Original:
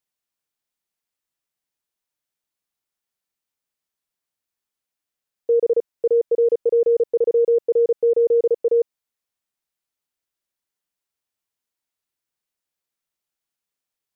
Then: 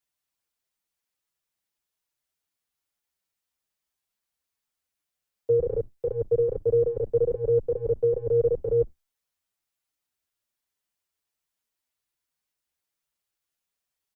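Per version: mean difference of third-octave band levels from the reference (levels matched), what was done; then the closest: 5.0 dB: octaver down 2 oct, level -4 dB; in parallel at -2 dB: negative-ratio compressor -20 dBFS, ratio -0.5; on the sum: bell 250 Hz -2 dB 2.3 oct; endless flanger 6.7 ms +2.4 Hz; gain -4.5 dB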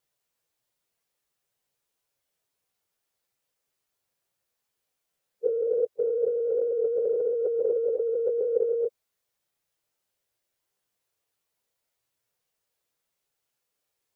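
2.0 dB: phase scrambler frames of 0.1 s; graphic EQ 125/250/500 Hz +5/-4/+7 dB; limiter -13.5 dBFS, peak gain reduction 12 dB; negative-ratio compressor -24 dBFS, ratio -1; gain -1.5 dB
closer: second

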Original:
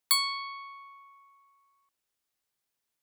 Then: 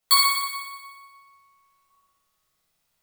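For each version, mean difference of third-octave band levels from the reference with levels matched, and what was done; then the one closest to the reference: 5.5 dB: on a send: flutter echo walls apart 10.3 m, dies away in 1.3 s; on the sum: shoebox room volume 740 m³, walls furnished, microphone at 6.6 m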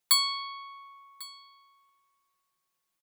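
2.0 dB: comb 5.7 ms, depth 79%; on a send: echo 1.097 s -21 dB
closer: second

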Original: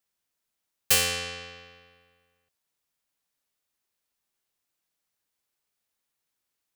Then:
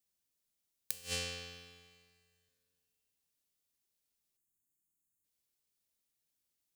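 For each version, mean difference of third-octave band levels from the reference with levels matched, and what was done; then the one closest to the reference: 10.0 dB: spectral delete 4.37–5.24, 370–6300 Hz; bell 1200 Hz -10 dB 2.5 oct; flipped gate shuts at -16 dBFS, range -28 dB; plate-style reverb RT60 2.4 s, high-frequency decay 1×, DRR 16.5 dB; gain -1 dB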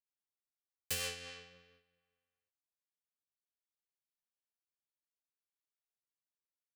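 2.5 dB: gate -53 dBFS, range -8 dB; flange 0.57 Hz, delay 4.1 ms, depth 6.7 ms, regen +55%; rotary speaker horn 8 Hz, later 0.6 Hz, at 0.62; gain -7 dB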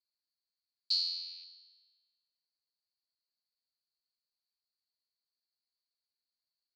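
22.0 dB: rattling part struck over -48 dBFS, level -21 dBFS; vibrato 0.63 Hz 17 cents; Butterworth band-pass 4400 Hz, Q 8; gain +4.5 dB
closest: second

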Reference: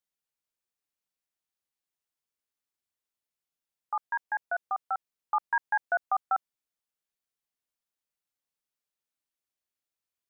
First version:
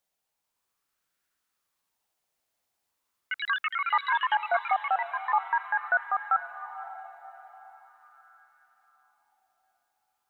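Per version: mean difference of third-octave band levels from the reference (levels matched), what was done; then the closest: 5.0 dB: limiter -29 dBFS, peak gain reduction 11 dB; echoes that change speed 0.554 s, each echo +5 st, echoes 3; on a send: diffused feedback echo 0.535 s, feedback 44%, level -12 dB; on the sum: LFO bell 0.41 Hz 680–1500 Hz +9 dB; gain +7 dB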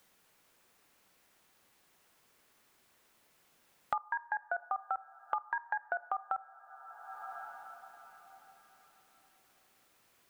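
3.5 dB: low shelf 60 Hz +5.5 dB; compressor, threshold -27 dBFS, peak gain reduction 5.5 dB; two-slope reverb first 0.48 s, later 4.1 s, from -18 dB, DRR 15 dB; three-band squash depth 100%; gain -3 dB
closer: second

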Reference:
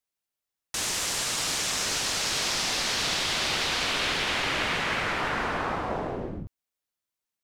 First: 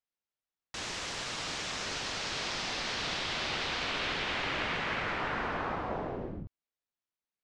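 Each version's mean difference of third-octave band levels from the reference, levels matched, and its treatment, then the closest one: 4.5 dB: air absorption 120 m; gain -4.5 dB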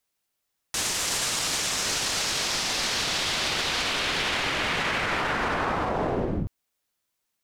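1.0 dB: limiter -26.5 dBFS, peak gain reduction 10.5 dB; gain +8.5 dB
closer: second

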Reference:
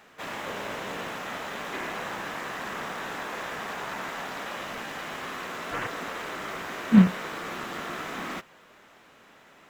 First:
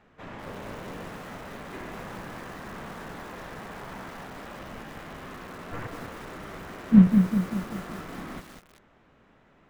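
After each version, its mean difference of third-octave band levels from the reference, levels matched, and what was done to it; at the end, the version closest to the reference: 6.5 dB: RIAA curve playback; lo-fi delay 0.194 s, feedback 55%, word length 6-bit, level -5.5 dB; gain -7 dB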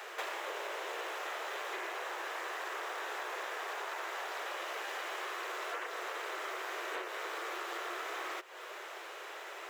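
9.5 dB: steep high-pass 340 Hz 96 dB/oct; compressor 16:1, threshold -46 dBFS, peak gain reduction 19.5 dB; gain +9.5 dB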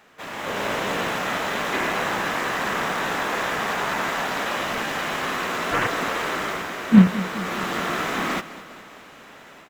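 3.0 dB: AGC gain up to 9.5 dB; on a send: feedback echo 0.206 s, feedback 57%, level -16 dB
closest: third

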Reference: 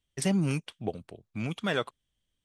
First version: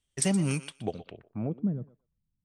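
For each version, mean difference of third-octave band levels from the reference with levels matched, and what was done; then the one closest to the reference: 6.5 dB: on a send: thinning echo 0.121 s, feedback 16%, high-pass 620 Hz, level -13 dB; on the sum: low-pass sweep 9100 Hz -> 170 Hz, 0.84–1.76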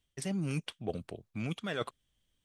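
3.5 dB: dynamic EQ 920 Hz, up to -5 dB, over -54 dBFS, Q 4.5; reverse; compressor 10:1, threshold -34 dBFS, peak gain reduction 13 dB; reverse; gain +3 dB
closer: second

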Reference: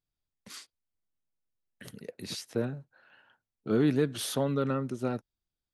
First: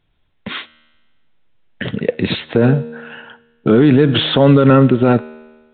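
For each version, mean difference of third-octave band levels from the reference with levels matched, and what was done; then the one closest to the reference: 7.0 dB: notch 1200 Hz, Q 15; resonator 78 Hz, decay 1.3 s, harmonics all, mix 40%; maximiser +30 dB; gain -1 dB; µ-law 64 kbps 8000 Hz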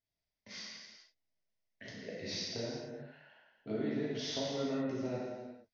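10.0 dB: thirty-one-band EQ 125 Hz -8 dB, 630 Hz +9 dB, 1250 Hz -10 dB, 2000 Hz +9 dB, 5000 Hz +5 dB; compressor 6:1, threshold -33 dBFS, peak gain reduction 12 dB; steep low-pass 6400 Hz 96 dB/oct; non-linear reverb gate 0.5 s falling, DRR -7 dB; gain -7.5 dB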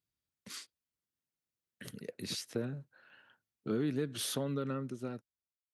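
3.0 dB: ending faded out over 1.51 s; HPF 75 Hz; bell 790 Hz -5.5 dB 0.87 oct; compressor 2.5:1, threshold -33 dBFS, peak gain reduction 8.5 dB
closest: third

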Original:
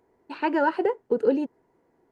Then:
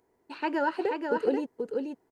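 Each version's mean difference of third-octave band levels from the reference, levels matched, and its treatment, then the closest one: 4.0 dB: high shelf 3900 Hz +9.5 dB; on a send: echo 0.483 s -4.5 dB; on the sum: gain -5.5 dB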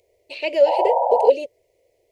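8.5 dB: EQ curve 100 Hz 0 dB, 220 Hz -28 dB, 580 Hz +10 dB, 860 Hz -17 dB, 1500 Hz -26 dB, 2200 Hz +7 dB, 5100 Hz +9 dB; painted sound noise, 0.66–1.3, 480–980 Hz -23 dBFS; gain +3.5 dB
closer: first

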